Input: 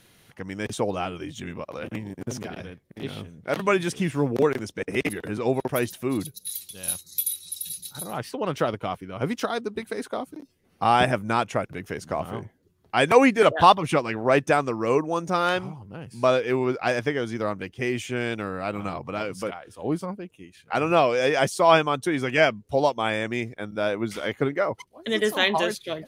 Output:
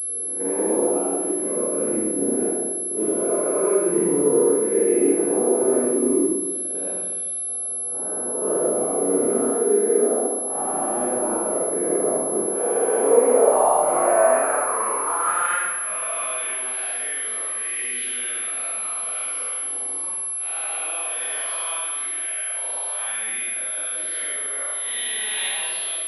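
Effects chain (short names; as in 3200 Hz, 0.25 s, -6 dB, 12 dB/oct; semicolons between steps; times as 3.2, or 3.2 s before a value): spectral swells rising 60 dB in 1.53 s; gate -30 dBFS, range -14 dB; three-band isolator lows -14 dB, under 160 Hz, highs -18 dB, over 2800 Hz; compressor 4:1, threshold -30 dBFS, peak gain reduction 19 dB; 7.52–8.42 resonator 61 Hz, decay 0.35 s, harmonics all, mix 80%; 21.77–22.47 level quantiser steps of 18 dB; band-pass sweep 380 Hz -> 4100 Hz, 12.84–16.81; 13.89–14.35 flutter echo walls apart 3.4 m, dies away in 0.27 s; Schroeder reverb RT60 1.3 s, combs from 25 ms, DRR -6.5 dB; pulse-width modulation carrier 11000 Hz; gain +9 dB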